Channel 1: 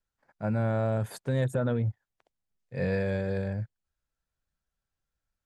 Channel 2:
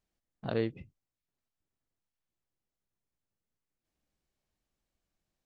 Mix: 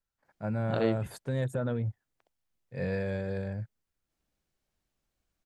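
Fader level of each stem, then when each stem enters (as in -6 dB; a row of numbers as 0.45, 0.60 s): -3.5, +2.0 dB; 0.00, 0.25 s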